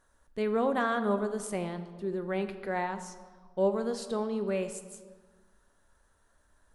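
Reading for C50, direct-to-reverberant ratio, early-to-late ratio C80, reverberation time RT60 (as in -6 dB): 11.0 dB, 8.5 dB, 12.5 dB, 1.5 s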